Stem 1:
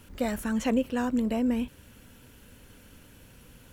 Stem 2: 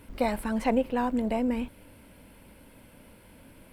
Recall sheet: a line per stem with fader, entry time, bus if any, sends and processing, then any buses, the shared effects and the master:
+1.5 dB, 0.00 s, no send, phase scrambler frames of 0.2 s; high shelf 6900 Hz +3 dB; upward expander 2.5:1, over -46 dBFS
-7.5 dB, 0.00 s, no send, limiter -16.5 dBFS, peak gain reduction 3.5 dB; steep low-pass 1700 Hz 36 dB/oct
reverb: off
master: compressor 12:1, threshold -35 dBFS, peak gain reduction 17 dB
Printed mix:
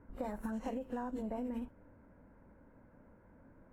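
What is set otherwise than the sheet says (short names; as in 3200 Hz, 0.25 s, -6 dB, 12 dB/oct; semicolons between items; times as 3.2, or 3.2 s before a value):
stem 1 +1.5 dB -> -9.0 dB; stem 2: polarity flipped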